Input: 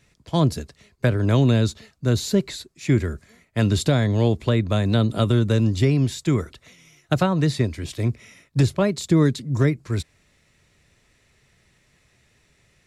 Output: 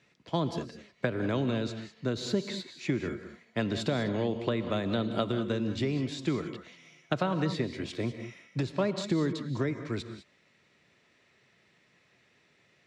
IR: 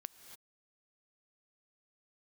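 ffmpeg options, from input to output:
-filter_complex "[0:a]acompressor=threshold=-20dB:ratio=6,highpass=190,lowpass=4.4k[a];[1:a]atrim=start_sample=2205,asetrate=61740,aresample=44100[b];[a][b]afir=irnorm=-1:irlink=0,volume=6dB"

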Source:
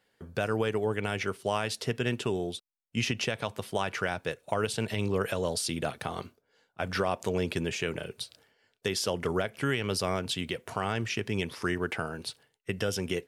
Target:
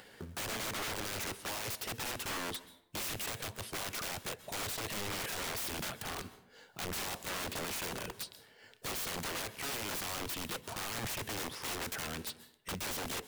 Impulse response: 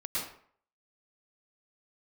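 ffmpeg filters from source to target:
-filter_complex "[0:a]aeval=exprs='(mod(39.8*val(0)+1,2)-1)/39.8':c=same,acrusher=bits=4:mode=log:mix=0:aa=0.000001,acompressor=mode=upward:threshold=-41dB:ratio=2.5,asplit=2[a][b];[1:a]atrim=start_sample=2205,asetrate=35721,aresample=44100,highshelf=f=9.2k:g=5.5[c];[b][c]afir=irnorm=-1:irlink=0,volume=-21.5dB[d];[a][d]amix=inputs=2:normalize=0,volume=-1.5dB"

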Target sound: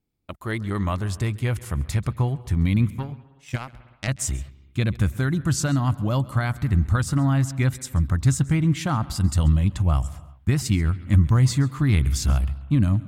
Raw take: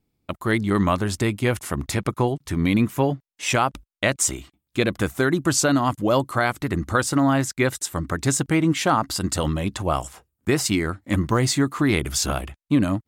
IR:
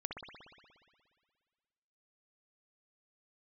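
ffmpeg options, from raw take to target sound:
-filter_complex "[0:a]asubboost=boost=11.5:cutoff=120,asettb=1/sr,asplit=3[a][b][c];[a]atrim=end=2.904[d];[b]atrim=start=2.9:end=4.08,asetpts=PTS-STARTPTS,afade=t=in:d=0.004:c=qsin,afade=t=out:st=1.176:d=0.004:c=qsin,aeval=exprs='0.668*(cos(1*acos(clip(val(0)/0.668,-1,1)))-cos(1*PI/2))+0.188*(cos(3*acos(clip(val(0)/0.668,-1,1)))-cos(3*PI/2))':c=same[e];[c]atrim=start=4.076[f];[d][e]acrossfade=d=0.004:c1=hsin:c2=qsin[g];[g][f]acrossfade=d=0.004:c1=qsin:c2=hsin,asplit=2[h][i];[1:a]atrim=start_sample=2205,afade=t=out:st=0.32:d=0.01,atrim=end_sample=14553,adelay=135[j];[i][j]afir=irnorm=-1:irlink=0,volume=-17.5dB[k];[h][k]amix=inputs=2:normalize=0,volume=-6.5dB"

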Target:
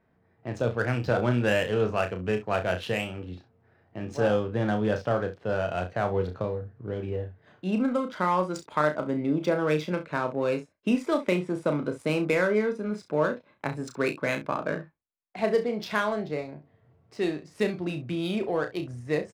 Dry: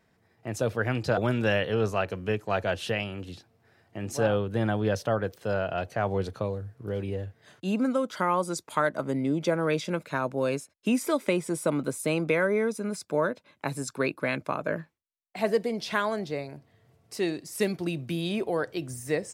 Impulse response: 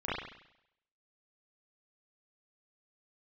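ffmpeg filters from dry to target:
-af "adynamicsmooth=sensitivity=6:basefreq=2.1k,aecho=1:1:33|66:0.447|0.178"

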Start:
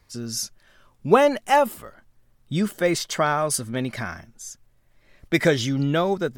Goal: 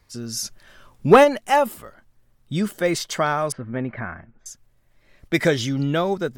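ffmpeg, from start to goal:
-filter_complex "[0:a]asplit=3[a][b][c];[a]afade=t=out:st=0.44:d=0.02[d];[b]acontrast=73,afade=t=in:st=0.44:d=0.02,afade=t=out:st=1.23:d=0.02[e];[c]afade=t=in:st=1.23:d=0.02[f];[d][e][f]amix=inputs=3:normalize=0,asettb=1/sr,asplit=3[g][h][i];[g]atrim=end=3.524[j];[h]atrim=start=3.52:end=4.46,asetpts=PTS-STARTPTS,afade=t=in:d=0.004:c=qsin,afade=t=out:st=0.936:d=0.004:c=qsin,lowpass=f=2.1k:w=0.5412,lowpass=f=2.1k:w=1.3066[k];[i]atrim=start=4.456[l];[j][k]acrossfade=d=0.004:c1=hsin:c2=qsin[m];[m][l]acrossfade=d=0.004:c1=qsin:c2=hsin"

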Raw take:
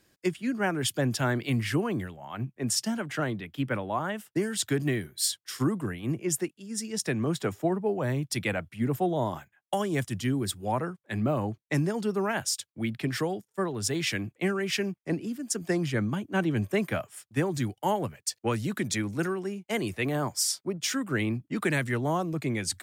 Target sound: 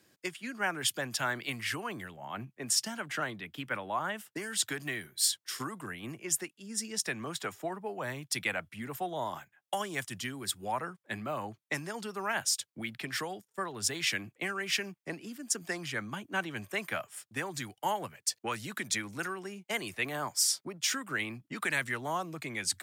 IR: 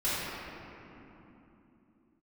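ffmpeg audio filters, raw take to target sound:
-filter_complex "[0:a]highpass=110,acrossover=split=760|920[a][b][c];[a]acompressor=threshold=-41dB:ratio=6[d];[d][b][c]amix=inputs=3:normalize=0"

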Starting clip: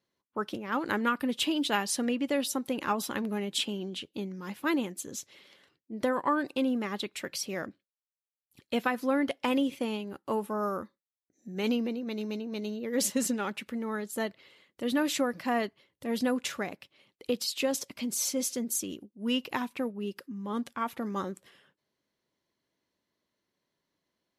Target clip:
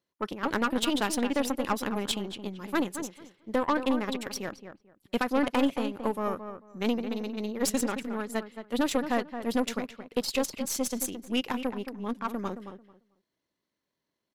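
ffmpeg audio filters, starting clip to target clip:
-filter_complex "[0:a]atempo=1.7,aeval=exprs='0.178*(cos(1*acos(clip(val(0)/0.178,-1,1)))-cos(1*PI/2))+0.0224*(cos(4*acos(clip(val(0)/0.178,-1,1)))-cos(4*PI/2))+0.0251*(cos(5*acos(clip(val(0)/0.178,-1,1)))-cos(5*PI/2))+0.0224*(cos(7*acos(clip(val(0)/0.178,-1,1)))-cos(7*PI/2))':c=same,asplit=2[a][b];[b]adelay=221,lowpass=f=1.9k:p=1,volume=-9dB,asplit=2[c][d];[d]adelay=221,lowpass=f=1.9k:p=1,volume=0.2,asplit=2[e][f];[f]adelay=221,lowpass=f=1.9k:p=1,volume=0.2[g];[a][c][e][g]amix=inputs=4:normalize=0"

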